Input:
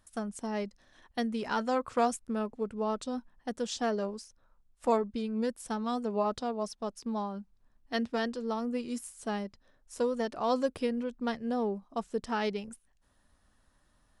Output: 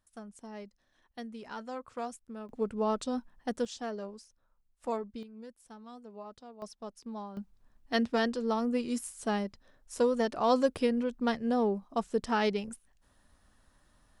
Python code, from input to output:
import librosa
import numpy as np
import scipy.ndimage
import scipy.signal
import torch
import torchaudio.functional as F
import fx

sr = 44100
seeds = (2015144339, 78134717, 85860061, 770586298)

y = fx.gain(x, sr, db=fx.steps((0.0, -10.5), (2.49, 2.0), (3.65, -7.0), (5.23, -16.0), (6.62, -7.0), (7.37, 3.0)))